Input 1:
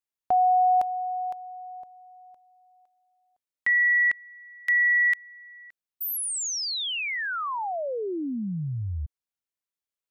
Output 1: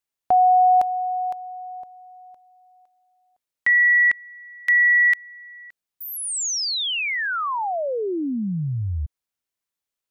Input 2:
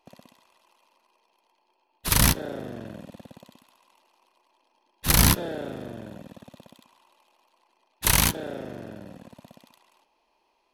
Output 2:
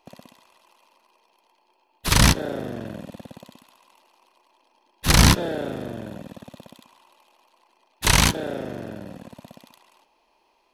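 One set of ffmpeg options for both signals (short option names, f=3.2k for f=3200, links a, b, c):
-filter_complex "[0:a]acrossover=split=8800[a][b];[b]acompressor=threshold=-40dB:ratio=4:attack=1:release=60[c];[a][c]amix=inputs=2:normalize=0,volume=5dB"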